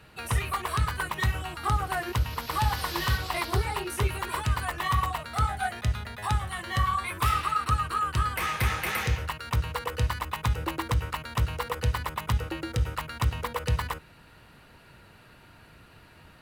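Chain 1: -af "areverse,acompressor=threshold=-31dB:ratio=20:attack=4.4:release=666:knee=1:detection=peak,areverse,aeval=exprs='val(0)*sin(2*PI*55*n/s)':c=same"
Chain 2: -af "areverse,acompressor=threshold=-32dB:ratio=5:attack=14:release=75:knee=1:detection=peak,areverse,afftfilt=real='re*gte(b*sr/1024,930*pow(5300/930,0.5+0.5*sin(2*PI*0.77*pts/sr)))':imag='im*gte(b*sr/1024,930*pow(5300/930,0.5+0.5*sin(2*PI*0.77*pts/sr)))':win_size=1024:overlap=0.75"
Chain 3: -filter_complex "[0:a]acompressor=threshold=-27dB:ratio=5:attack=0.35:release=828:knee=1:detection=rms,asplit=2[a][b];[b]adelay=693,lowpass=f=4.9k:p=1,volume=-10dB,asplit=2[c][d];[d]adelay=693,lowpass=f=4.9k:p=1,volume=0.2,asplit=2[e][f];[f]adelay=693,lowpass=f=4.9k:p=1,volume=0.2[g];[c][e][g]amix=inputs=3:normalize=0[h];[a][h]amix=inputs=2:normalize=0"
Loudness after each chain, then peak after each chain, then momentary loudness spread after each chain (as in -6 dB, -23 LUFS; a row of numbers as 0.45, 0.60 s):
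-42.0, -40.0, -36.0 LUFS; -25.5, -22.0, -22.0 dBFS; 16, 15, 14 LU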